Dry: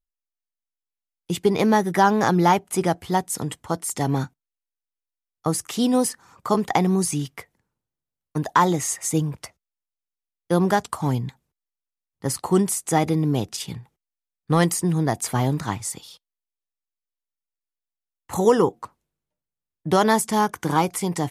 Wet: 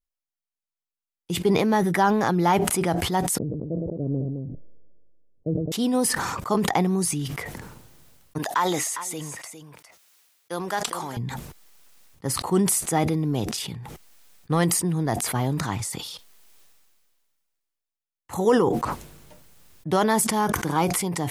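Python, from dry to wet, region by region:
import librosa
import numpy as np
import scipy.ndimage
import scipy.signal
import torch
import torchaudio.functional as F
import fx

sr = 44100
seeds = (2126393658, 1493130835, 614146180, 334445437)

y = fx.chain(x, sr, fx.steep_lowpass(hz=600.0, slope=72),
    fx.echo_multitap(ms=(112, 213), db=(-18.5, -6.5)),
    fx.sustainer(db_per_s=29.0), at=(3.38, 5.72))
y = fx.chain(y, sr, fx.highpass(hz=980.0, slope=6),
    fx.echo_single(ms=406, db=-15.5), at=(8.38, 11.17))
y = fx.dynamic_eq(y, sr, hz=6600.0, q=1.6, threshold_db=-41.0, ratio=4.0, max_db=-4)
y = fx.sustainer(y, sr, db_per_s=28.0)
y = F.gain(torch.from_numpy(y), -3.5).numpy()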